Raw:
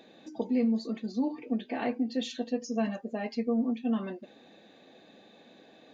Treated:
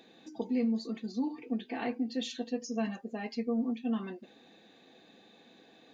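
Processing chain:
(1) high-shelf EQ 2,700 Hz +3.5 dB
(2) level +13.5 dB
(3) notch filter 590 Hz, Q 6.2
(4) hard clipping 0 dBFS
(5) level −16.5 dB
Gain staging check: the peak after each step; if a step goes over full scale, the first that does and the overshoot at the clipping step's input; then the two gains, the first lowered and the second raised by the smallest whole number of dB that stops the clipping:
−17.0, −3.5, −4.0, −4.0, −20.5 dBFS
no step passes full scale

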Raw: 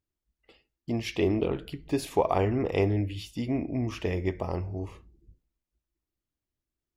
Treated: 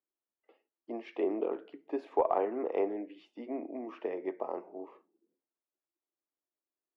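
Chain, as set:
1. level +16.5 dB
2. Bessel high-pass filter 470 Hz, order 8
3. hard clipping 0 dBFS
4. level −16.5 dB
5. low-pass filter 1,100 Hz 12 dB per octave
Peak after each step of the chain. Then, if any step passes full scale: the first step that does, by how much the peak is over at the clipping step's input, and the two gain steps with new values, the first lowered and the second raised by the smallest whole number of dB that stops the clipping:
+5.0, +3.5, 0.0, −16.5, −16.0 dBFS
step 1, 3.5 dB
step 1 +12.5 dB, step 4 −12.5 dB

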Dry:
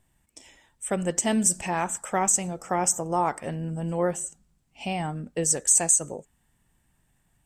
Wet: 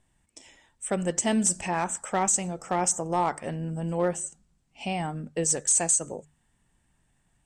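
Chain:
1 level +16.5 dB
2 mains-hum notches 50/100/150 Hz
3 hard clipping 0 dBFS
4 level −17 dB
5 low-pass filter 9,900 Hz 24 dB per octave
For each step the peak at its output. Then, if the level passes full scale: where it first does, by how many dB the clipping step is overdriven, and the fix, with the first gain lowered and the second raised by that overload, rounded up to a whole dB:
+8.0, +8.0, 0.0, −17.0, −14.5 dBFS
step 1, 8.0 dB
step 1 +8.5 dB, step 4 −9 dB

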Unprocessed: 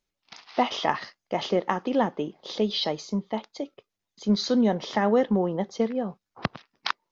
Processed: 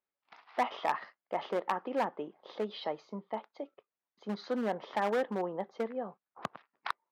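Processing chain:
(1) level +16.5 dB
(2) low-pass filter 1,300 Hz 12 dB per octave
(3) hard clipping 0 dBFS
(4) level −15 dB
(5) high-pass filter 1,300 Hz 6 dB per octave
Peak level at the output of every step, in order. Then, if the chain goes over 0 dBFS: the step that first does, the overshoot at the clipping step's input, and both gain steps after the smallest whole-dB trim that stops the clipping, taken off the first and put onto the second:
+10.5, +7.0, 0.0, −15.0, −14.5 dBFS
step 1, 7.0 dB
step 1 +9.5 dB, step 4 −8 dB

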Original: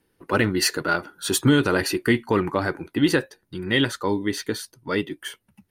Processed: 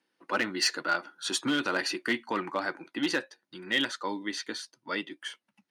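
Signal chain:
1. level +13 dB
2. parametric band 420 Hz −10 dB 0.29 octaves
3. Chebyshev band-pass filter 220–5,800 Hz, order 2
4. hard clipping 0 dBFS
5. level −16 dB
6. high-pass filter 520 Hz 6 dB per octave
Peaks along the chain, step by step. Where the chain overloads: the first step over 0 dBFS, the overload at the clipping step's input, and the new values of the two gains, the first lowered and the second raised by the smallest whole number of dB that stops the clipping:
+6.0, +5.0, +5.5, 0.0, −16.0, −14.5 dBFS
step 1, 5.5 dB
step 1 +7 dB, step 5 −10 dB

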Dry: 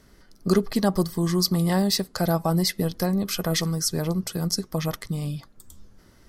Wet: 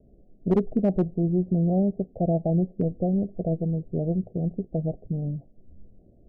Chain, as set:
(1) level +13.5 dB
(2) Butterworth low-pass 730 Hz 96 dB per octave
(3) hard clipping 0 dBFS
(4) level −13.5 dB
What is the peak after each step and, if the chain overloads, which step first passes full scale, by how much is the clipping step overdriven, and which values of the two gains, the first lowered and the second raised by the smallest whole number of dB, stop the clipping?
+6.0, +5.5, 0.0, −13.5 dBFS
step 1, 5.5 dB
step 1 +7.5 dB, step 4 −7.5 dB

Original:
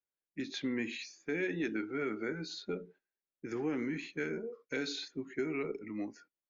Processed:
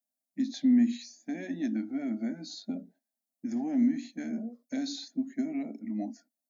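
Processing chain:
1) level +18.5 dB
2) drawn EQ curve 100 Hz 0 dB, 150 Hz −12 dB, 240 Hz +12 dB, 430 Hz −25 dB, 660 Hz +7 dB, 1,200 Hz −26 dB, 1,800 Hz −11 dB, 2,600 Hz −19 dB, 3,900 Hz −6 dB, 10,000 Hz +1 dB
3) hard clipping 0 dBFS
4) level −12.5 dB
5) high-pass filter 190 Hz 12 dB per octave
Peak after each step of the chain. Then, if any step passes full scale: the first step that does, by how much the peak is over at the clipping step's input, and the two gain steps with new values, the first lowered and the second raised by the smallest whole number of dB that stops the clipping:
−5.5, −2.5, −2.5, −15.0, −16.5 dBFS
no step passes full scale

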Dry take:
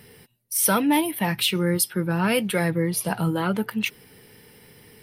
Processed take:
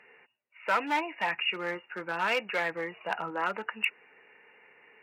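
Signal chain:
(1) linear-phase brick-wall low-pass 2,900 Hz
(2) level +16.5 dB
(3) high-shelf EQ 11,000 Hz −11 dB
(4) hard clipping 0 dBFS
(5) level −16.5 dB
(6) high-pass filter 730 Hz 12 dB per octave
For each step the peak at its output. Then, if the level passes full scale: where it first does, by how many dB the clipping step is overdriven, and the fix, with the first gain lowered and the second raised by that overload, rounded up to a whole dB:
−9.0, +7.5, +7.5, 0.0, −16.5, −14.0 dBFS
step 2, 7.5 dB
step 2 +8.5 dB, step 5 −8.5 dB

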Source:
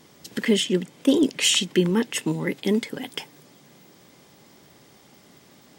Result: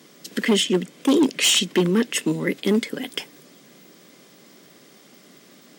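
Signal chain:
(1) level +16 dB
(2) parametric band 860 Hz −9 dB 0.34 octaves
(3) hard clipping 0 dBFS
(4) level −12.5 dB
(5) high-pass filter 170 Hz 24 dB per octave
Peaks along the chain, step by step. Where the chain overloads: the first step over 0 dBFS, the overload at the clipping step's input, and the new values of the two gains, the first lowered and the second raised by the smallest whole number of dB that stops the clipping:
+9.0, +9.0, 0.0, −12.5, −7.0 dBFS
step 1, 9.0 dB
step 1 +7 dB, step 4 −3.5 dB

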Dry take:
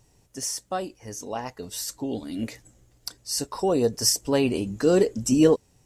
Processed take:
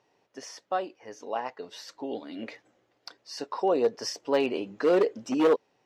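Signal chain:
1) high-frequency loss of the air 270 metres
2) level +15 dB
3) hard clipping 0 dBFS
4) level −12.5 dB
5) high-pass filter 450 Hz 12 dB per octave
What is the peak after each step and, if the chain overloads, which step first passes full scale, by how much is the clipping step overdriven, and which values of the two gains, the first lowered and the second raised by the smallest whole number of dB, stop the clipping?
−7.0, +8.0, 0.0, −12.5, −11.5 dBFS
step 2, 8.0 dB
step 2 +7 dB, step 4 −4.5 dB

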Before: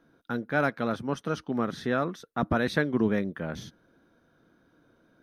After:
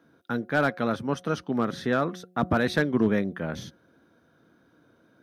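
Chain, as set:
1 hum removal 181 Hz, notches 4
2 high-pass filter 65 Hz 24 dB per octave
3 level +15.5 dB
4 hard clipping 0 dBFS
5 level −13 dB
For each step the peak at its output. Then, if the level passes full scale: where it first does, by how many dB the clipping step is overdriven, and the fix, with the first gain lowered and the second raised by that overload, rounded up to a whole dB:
−10.5, −10.5, +5.0, 0.0, −13.0 dBFS
step 3, 5.0 dB
step 3 +10.5 dB, step 5 −8 dB

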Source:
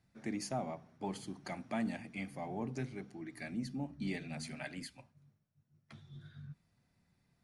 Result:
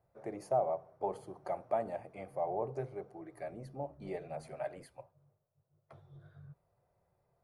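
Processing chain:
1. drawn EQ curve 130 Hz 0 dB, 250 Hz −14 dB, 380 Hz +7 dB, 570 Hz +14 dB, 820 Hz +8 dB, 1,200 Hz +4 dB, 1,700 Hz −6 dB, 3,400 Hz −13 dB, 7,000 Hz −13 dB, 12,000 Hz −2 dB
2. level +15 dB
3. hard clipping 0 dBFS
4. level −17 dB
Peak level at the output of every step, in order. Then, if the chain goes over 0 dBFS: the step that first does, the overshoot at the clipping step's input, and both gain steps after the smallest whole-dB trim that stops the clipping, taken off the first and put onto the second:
−18.0, −3.0, −3.0, −20.0 dBFS
no step passes full scale

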